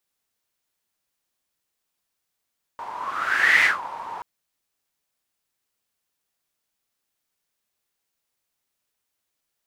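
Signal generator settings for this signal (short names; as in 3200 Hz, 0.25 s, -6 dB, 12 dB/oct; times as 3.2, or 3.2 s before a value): whoosh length 1.43 s, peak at 0.85, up 0.79 s, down 0.18 s, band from 950 Hz, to 2000 Hz, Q 8.8, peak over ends 17 dB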